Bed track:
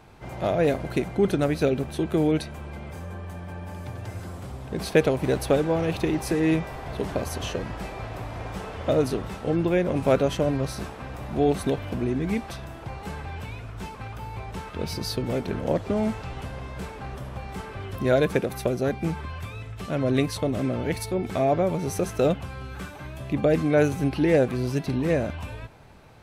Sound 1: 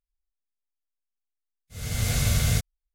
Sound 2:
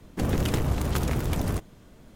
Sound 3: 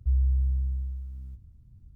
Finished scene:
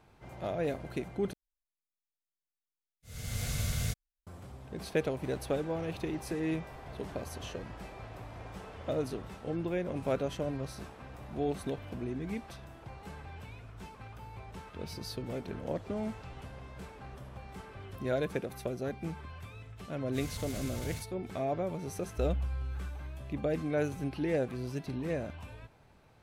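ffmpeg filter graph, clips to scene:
-filter_complex "[1:a]asplit=2[s0][s1];[0:a]volume=0.282[s2];[s1]acompressor=threshold=0.0178:ratio=6:attack=3.2:release=140:knee=1:detection=peak[s3];[s2]asplit=2[s4][s5];[s4]atrim=end=1.334[s6];[s0]atrim=end=2.94,asetpts=PTS-STARTPTS,volume=0.316[s7];[s5]atrim=start=4.266[s8];[s3]atrim=end=2.94,asetpts=PTS-STARTPTS,volume=0.708,afade=t=in:d=0.004:c=hsin,afade=t=out:st=2.936:d=0.004:c=hsin,adelay=18420[s9];[3:a]atrim=end=1.95,asetpts=PTS-STARTPTS,volume=0.316,afade=t=in:d=0.004:c=hsin,afade=t=out:st=1.946:d=0.004:c=hsin,adelay=975492S[s10];[s6][s7]acrossfade=d=0.004:c1=hsin:c2=hsin[s11];[s11][s8]acrossfade=d=0.004:c1=hsin:c2=hsin[s12];[s12][s9][s10]amix=inputs=3:normalize=0"

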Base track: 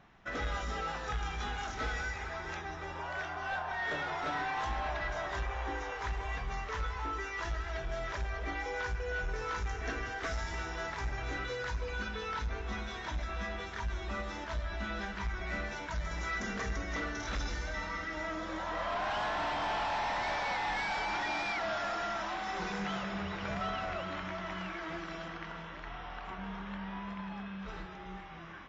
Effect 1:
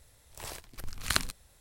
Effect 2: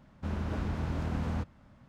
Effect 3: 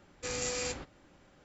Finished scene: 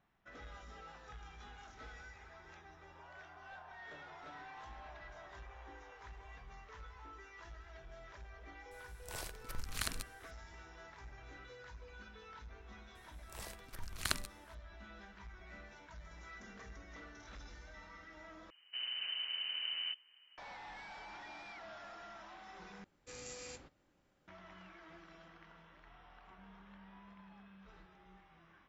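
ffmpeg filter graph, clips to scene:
-filter_complex "[1:a]asplit=2[s0][s1];[0:a]volume=0.15[s2];[s0]alimiter=limit=0.188:level=0:latency=1:release=119[s3];[2:a]lowpass=f=2600:t=q:w=0.5098,lowpass=f=2600:t=q:w=0.6013,lowpass=f=2600:t=q:w=0.9,lowpass=f=2600:t=q:w=2.563,afreqshift=-3100[s4];[s2]asplit=3[s5][s6][s7];[s5]atrim=end=18.504[s8];[s4]atrim=end=1.88,asetpts=PTS-STARTPTS,volume=0.398[s9];[s6]atrim=start=20.376:end=22.844[s10];[3:a]atrim=end=1.44,asetpts=PTS-STARTPTS,volume=0.2[s11];[s7]atrim=start=24.276[s12];[s3]atrim=end=1.6,asetpts=PTS-STARTPTS,volume=0.668,afade=t=in:d=0.004:c=hsin,afade=t=out:st=1.596:d=0.004:c=hsin,adelay=8710[s13];[s1]atrim=end=1.6,asetpts=PTS-STARTPTS,volume=0.422,afade=t=in:d=0.004:c=hsin,afade=t=out:st=1.596:d=0.004:c=hsin,adelay=12950[s14];[s8][s9]acrossfade=d=0.004:c1=hsin:c2=hsin[s15];[s15][s10]acrossfade=d=0.004:c1=hsin:c2=hsin[s16];[s16][s11]acrossfade=d=0.004:c1=hsin:c2=hsin[s17];[s17][s12]acrossfade=d=0.004:c1=hsin:c2=hsin[s18];[s18][s13][s14]amix=inputs=3:normalize=0"

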